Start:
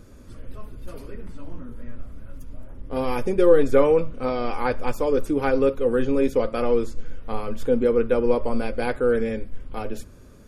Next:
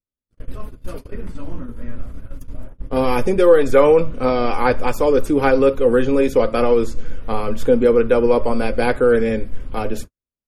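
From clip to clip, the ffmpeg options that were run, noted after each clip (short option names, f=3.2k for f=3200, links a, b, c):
-filter_complex "[0:a]agate=range=-57dB:threshold=-33dB:ratio=16:detection=peak,acrossover=split=490|2400[a][b][c];[a]alimiter=limit=-18dB:level=0:latency=1[d];[d][b][c]amix=inputs=3:normalize=0,volume=7.5dB"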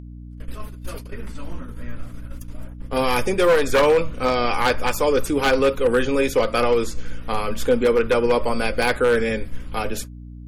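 -af "aeval=exprs='val(0)+0.0316*(sin(2*PI*60*n/s)+sin(2*PI*2*60*n/s)/2+sin(2*PI*3*60*n/s)/3+sin(2*PI*4*60*n/s)/4+sin(2*PI*5*60*n/s)/5)':c=same,tiltshelf=f=970:g=-6,aeval=exprs='0.316*(abs(mod(val(0)/0.316+3,4)-2)-1)':c=same"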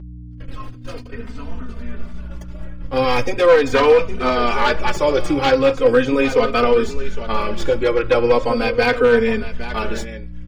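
-filter_complex "[0:a]acrossover=split=6800[a][b];[a]aecho=1:1:812:0.251[c];[b]acrusher=samples=34:mix=1:aa=0.000001[d];[c][d]amix=inputs=2:normalize=0,asplit=2[e][f];[f]adelay=3.1,afreqshift=-0.39[g];[e][g]amix=inputs=2:normalize=1,volume=5.5dB"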